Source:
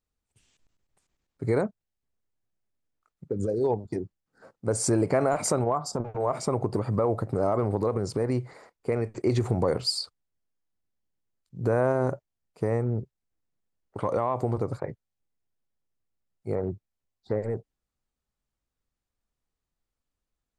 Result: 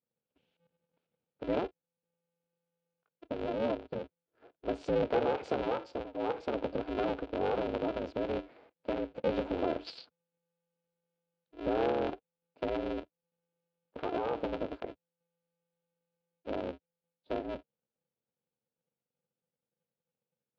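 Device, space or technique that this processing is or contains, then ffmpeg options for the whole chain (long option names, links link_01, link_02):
ring modulator pedal into a guitar cabinet: -af "aeval=exprs='val(0)*sgn(sin(2*PI*170*n/s))':channel_layout=same,highpass=94,equalizer=frequency=100:width_type=q:width=4:gain=-7,equalizer=frequency=180:width_type=q:width=4:gain=-6,equalizer=frequency=480:width_type=q:width=4:gain=8,equalizer=frequency=1100:width_type=q:width=4:gain=-7,equalizer=frequency=1900:width_type=q:width=4:gain=-8,lowpass=frequency=3400:width=0.5412,lowpass=frequency=3400:width=1.3066,volume=-7.5dB"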